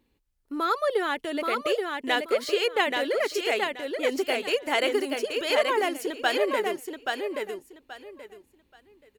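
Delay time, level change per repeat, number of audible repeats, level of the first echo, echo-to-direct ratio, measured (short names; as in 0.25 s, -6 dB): 0.829 s, -13.0 dB, 3, -4.0 dB, -4.0 dB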